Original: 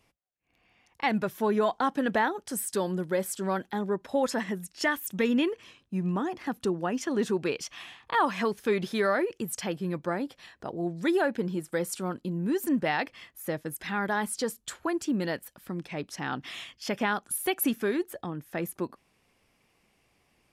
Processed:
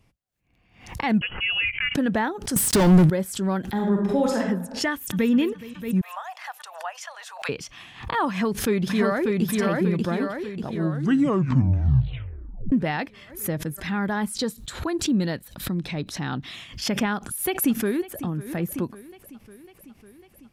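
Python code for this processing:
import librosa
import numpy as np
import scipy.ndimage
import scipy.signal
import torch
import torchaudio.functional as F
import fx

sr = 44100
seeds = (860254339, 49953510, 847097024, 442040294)

y = fx.freq_invert(x, sr, carrier_hz=3100, at=(1.21, 1.95))
y = fx.leveller(y, sr, passes=5, at=(2.56, 3.1))
y = fx.reverb_throw(y, sr, start_s=3.7, length_s=0.68, rt60_s=0.82, drr_db=-0.5)
y = fx.echo_throw(y, sr, start_s=4.91, length_s=0.4, ms=210, feedback_pct=70, wet_db=-14.5)
y = fx.steep_highpass(y, sr, hz=620.0, slope=72, at=(6.01, 7.49))
y = fx.echo_throw(y, sr, start_s=8.3, length_s=1.13, ms=590, feedback_pct=55, wet_db=-1.5)
y = fx.peak_eq(y, sr, hz=3900.0, db=11.5, octaves=0.21, at=(14.36, 16.56))
y = fx.echo_throw(y, sr, start_s=17.14, length_s=1.03, ms=550, feedback_pct=70, wet_db=-17.0)
y = fx.edit(y, sr, fx.tape_stop(start_s=10.73, length_s=1.99), tone=tone)
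y = fx.bass_treble(y, sr, bass_db=12, treble_db=-1)
y = fx.pre_swell(y, sr, db_per_s=110.0)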